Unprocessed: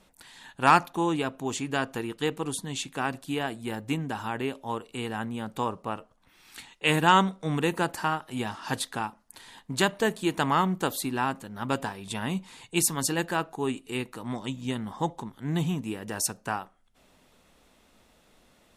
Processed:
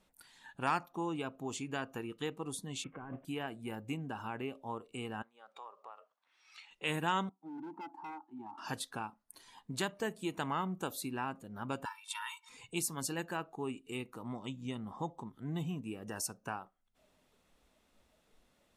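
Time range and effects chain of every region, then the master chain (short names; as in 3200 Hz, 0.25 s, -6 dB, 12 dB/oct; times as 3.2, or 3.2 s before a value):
2.84–3.25 CVSD 16 kbps + LPF 2100 Hz + negative-ratio compressor -38 dBFS
5.22–6.71 compressor 3:1, threshold -40 dBFS + BPF 740–5500 Hz
7.29–8.58 double band-pass 510 Hz, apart 1.5 oct + hard clip -36.5 dBFS
11.85–12.49 brick-wall FIR high-pass 860 Hz + comb 2.2 ms, depth 99%
whole clip: compressor 1.5:1, threshold -50 dBFS; spectral noise reduction 10 dB; gain -1 dB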